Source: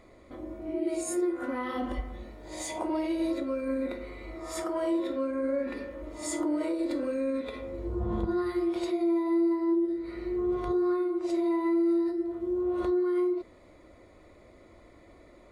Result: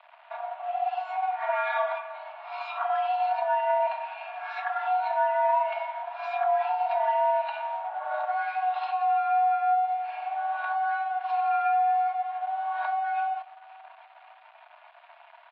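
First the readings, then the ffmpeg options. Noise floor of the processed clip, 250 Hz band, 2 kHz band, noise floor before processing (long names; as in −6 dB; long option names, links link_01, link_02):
−54 dBFS, below −40 dB, +10.5 dB, −55 dBFS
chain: -filter_complex "[0:a]aecho=1:1:3.9:0.96,asplit=2[link_01][link_02];[link_02]acompressor=threshold=-39dB:ratio=6,volume=2dB[link_03];[link_01][link_03]amix=inputs=2:normalize=0,aeval=exprs='sgn(val(0))*max(abs(val(0))-0.00531,0)':channel_layout=same,highpass=frequency=220:width_type=q:width=0.5412,highpass=frequency=220:width_type=q:width=1.307,lowpass=frequency=3200:width_type=q:width=0.5176,lowpass=frequency=3200:width_type=q:width=0.7071,lowpass=frequency=3200:width_type=q:width=1.932,afreqshift=400,asplit=2[link_04][link_05];[link_05]adelay=542,lowpass=frequency=1400:poles=1,volume=-22dB,asplit=2[link_06][link_07];[link_07]adelay=542,lowpass=frequency=1400:poles=1,volume=0.47,asplit=2[link_08][link_09];[link_09]adelay=542,lowpass=frequency=1400:poles=1,volume=0.47[link_10];[link_04][link_06][link_08][link_10]amix=inputs=4:normalize=0" -ar 44100 -c:a libmp3lame -b:a 40k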